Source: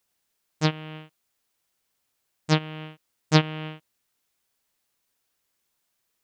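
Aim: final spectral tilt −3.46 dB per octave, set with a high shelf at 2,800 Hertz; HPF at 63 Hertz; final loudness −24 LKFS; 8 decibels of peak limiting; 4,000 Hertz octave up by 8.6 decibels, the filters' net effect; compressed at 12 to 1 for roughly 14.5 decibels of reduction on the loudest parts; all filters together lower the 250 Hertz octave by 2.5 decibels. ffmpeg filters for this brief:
ffmpeg -i in.wav -af "highpass=63,equalizer=frequency=250:width_type=o:gain=-5,highshelf=frequency=2800:gain=8.5,equalizer=frequency=4000:width_type=o:gain=4,acompressor=threshold=-25dB:ratio=12,volume=14dB,alimiter=limit=-0.5dB:level=0:latency=1" out.wav

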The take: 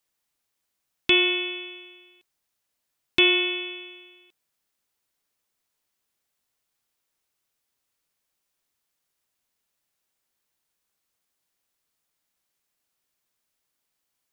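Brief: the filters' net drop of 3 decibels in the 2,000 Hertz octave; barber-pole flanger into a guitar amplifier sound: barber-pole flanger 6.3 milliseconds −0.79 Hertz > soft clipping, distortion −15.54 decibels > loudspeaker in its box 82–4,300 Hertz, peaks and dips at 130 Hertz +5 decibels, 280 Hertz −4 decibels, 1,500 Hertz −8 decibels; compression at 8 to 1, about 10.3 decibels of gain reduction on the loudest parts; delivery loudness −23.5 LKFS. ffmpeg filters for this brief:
ffmpeg -i in.wav -filter_complex "[0:a]equalizer=frequency=2000:width_type=o:gain=-3.5,acompressor=threshold=-26dB:ratio=8,asplit=2[link_01][link_02];[link_02]adelay=6.3,afreqshift=-0.79[link_03];[link_01][link_03]amix=inputs=2:normalize=1,asoftclip=threshold=-26dB,highpass=82,equalizer=frequency=130:width_type=q:width=4:gain=5,equalizer=frequency=280:width_type=q:width=4:gain=-4,equalizer=frequency=1500:width_type=q:width=4:gain=-8,lowpass=frequency=4300:width=0.5412,lowpass=frequency=4300:width=1.3066,volume=13dB" out.wav

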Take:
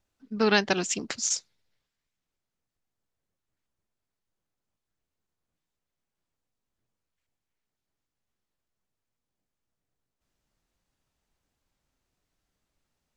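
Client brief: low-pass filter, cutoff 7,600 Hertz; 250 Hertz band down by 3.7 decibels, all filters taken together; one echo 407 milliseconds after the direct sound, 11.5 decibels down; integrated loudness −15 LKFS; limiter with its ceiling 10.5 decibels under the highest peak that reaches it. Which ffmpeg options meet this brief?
ffmpeg -i in.wav -af "lowpass=7600,equalizer=frequency=250:width_type=o:gain=-5,alimiter=limit=-18dB:level=0:latency=1,aecho=1:1:407:0.266,volume=17dB" out.wav

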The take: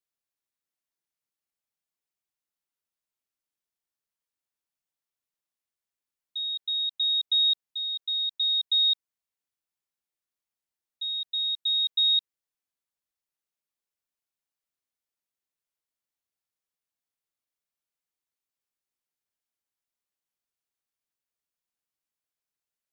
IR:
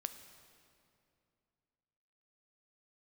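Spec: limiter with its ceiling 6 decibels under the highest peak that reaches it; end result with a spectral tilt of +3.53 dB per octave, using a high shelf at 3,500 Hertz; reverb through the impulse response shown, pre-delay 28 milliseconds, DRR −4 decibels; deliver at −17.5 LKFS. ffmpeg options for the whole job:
-filter_complex "[0:a]highshelf=frequency=3500:gain=8.5,alimiter=limit=-20dB:level=0:latency=1,asplit=2[link_01][link_02];[1:a]atrim=start_sample=2205,adelay=28[link_03];[link_02][link_03]afir=irnorm=-1:irlink=0,volume=6dB[link_04];[link_01][link_04]amix=inputs=2:normalize=0,volume=-1.5dB"

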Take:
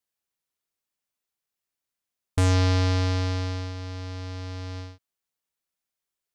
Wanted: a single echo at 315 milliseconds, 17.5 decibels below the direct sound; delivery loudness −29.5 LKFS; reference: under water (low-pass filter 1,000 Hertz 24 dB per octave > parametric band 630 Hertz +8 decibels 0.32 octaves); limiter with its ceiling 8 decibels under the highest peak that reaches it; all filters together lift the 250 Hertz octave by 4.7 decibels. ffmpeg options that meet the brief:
ffmpeg -i in.wav -af "equalizer=frequency=250:width_type=o:gain=5,alimiter=limit=-21.5dB:level=0:latency=1,lowpass=frequency=1000:width=0.5412,lowpass=frequency=1000:width=1.3066,equalizer=frequency=630:width_type=o:width=0.32:gain=8,aecho=1:1:315:0.133,volume=0.5dB" out.wav

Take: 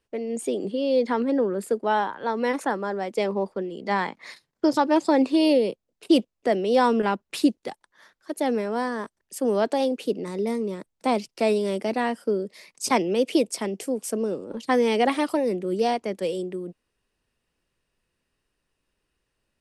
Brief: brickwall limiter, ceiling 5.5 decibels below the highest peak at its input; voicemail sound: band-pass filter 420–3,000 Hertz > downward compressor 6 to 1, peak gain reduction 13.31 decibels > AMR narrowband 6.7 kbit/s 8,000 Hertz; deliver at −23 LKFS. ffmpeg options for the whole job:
ffmpeg -i in.wav -af "alimiter=limit=-13.5dB:level=0:latency=1,highpass=420,lowpass=3000,acompressor=threshold=-34dB:ratio=6,volume=16.5dB" -ar 8000 -c:a libopencore_amrnb -b:a 6700 out.amr

